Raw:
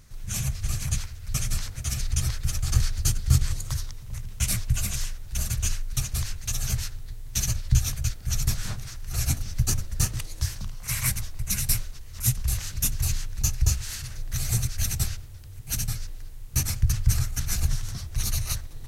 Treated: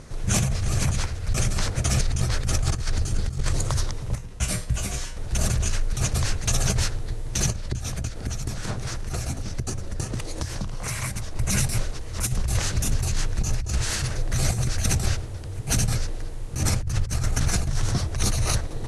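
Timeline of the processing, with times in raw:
4.15–5.17 resonator 55 Hz, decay 0.35 s, harmonics odd, mix 80%
7.5–11.36 compressor 12:1, threshold -33 dBFS
whole clip: steep low-pass 11000 Hz 48 dB/oct; bell 460 Hz +13.5 dB 2.8 oct; negative-ratio compressor -26 dBFS, ratio -1; gain +4 dB

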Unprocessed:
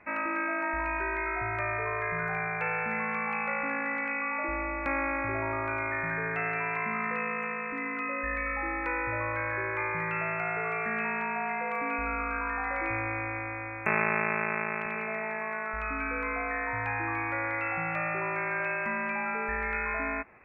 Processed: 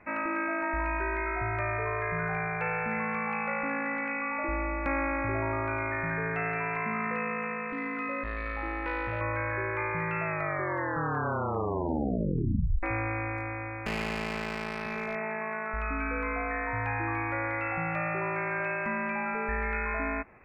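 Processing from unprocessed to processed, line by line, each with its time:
7.68–9.21 core saturation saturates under 570 Hz
10.23 tape stop 2.60 s
13.37–15.15 hard clip -26 dBFS
whole clip: tilt -1.5 dB/oct

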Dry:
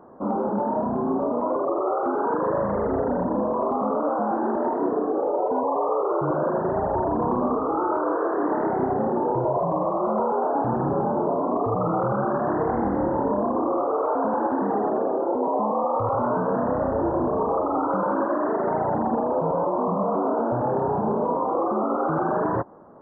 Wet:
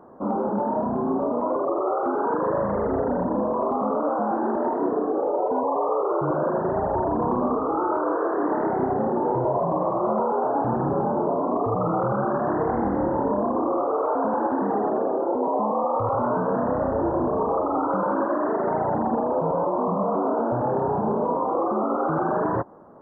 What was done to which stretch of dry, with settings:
8.68–9.65 echo throw 0.55 s, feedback 45%, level -13 dB

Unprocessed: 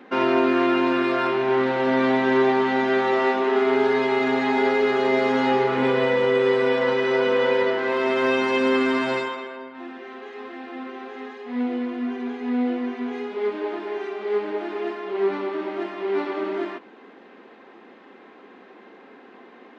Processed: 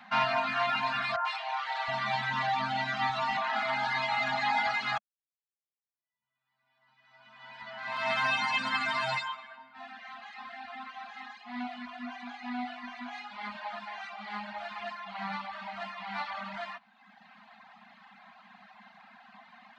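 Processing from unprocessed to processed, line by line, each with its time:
1.16–3.37 three bands offset in time mids, highs, lows 90/720 ms, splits 550/1700 Hz
4.98–8.11 fade in exponential
whole clip: elliptic band-stop 210–700 Hz, stop band 40 dB; reverb removal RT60 1.2 s; bell 4300 Hz +6.5 dB 0.27 oct

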